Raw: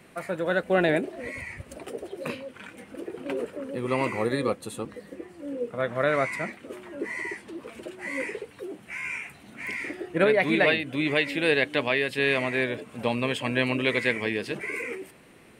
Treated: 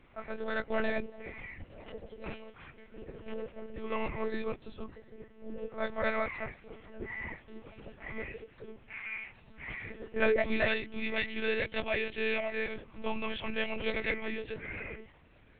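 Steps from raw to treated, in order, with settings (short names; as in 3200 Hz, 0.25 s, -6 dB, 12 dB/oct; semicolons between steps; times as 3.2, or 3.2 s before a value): chorus voices 6, 0.13 Hz, delay 18 ms, depth 1 ms; monotone LPC vocoder at 8 kHz 220 Hz; gain -4.5 dB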